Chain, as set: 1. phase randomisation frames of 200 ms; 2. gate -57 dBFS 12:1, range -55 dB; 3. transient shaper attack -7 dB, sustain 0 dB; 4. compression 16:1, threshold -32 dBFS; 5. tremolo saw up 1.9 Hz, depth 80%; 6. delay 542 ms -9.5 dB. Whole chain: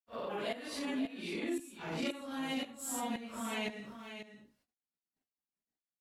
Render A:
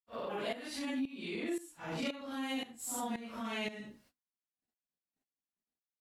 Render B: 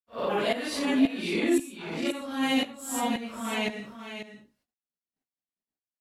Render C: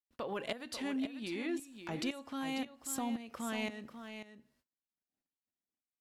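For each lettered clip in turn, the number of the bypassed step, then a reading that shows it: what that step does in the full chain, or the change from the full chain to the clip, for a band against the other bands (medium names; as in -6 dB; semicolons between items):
6, momentary loudness spread change -6 LU; 4, mean gain reduction 8.0 dB; 1, 250 Hz band +1.5 dB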